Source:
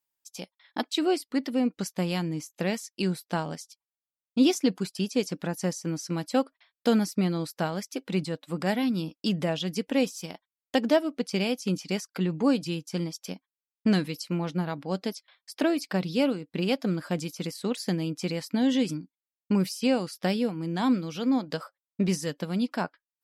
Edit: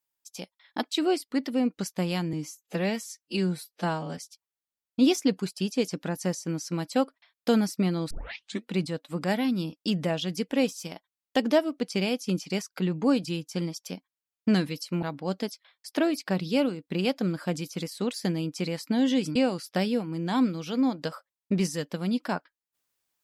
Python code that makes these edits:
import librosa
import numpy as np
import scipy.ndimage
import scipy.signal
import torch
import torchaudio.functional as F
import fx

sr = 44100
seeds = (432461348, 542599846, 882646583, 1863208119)

y = fx.edit(x, sr, fx.stretch_span(start_s=2.33, length_s=1.23, factor=1.5),
    fx.tape_start(start_s=7.49, length_s=0.61),
    fx.cut(start_s=14.41, length_s=0.25),
    fx.cut(start_s=18.99, length_s=0.85), tone=tone)